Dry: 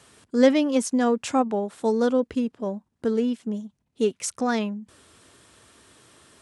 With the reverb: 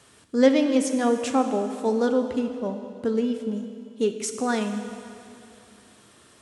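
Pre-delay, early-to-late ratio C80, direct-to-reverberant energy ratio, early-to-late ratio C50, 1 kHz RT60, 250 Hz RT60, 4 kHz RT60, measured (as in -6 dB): 5 ms, 8.5 dB, 6.5 dB, 8.0 dB, 2.7 s, 2.8 s, 2.5 s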